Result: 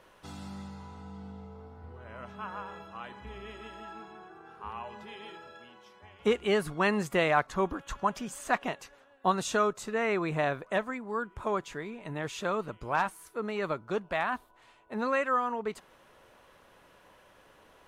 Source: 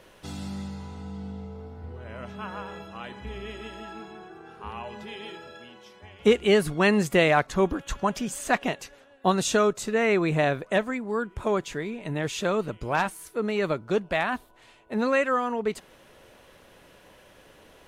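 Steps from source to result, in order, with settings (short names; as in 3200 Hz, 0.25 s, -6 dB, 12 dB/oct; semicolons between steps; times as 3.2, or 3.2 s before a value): bell 1100 Hz +7.5 dB 1.2 oct; gain -8 dB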